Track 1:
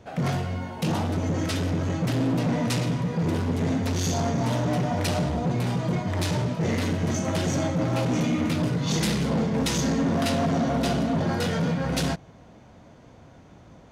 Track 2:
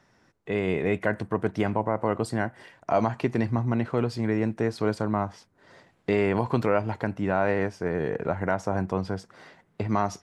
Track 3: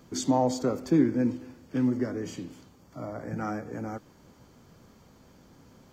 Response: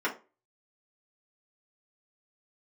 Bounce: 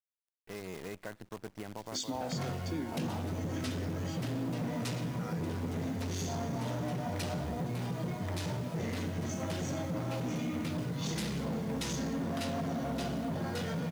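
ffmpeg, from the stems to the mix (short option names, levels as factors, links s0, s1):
-filter_complex "[0:a]acompressor=mode=upward:threshold=0.0398:ratio=2.5,adelay=2150,volume=1.06[s0];[1:a]volume=0.168[s1];[2:a]equalizer=f=3800:t=o:w=2:g=15,adelay=1800,volume=0.531[s2];[s0][s1][s2]amix=inputs=3:normalize=0,acrusher=bits=8:dc=4:mix=0:aa=0.000001,acompressor=threshold=0.0126:ratio=2.5"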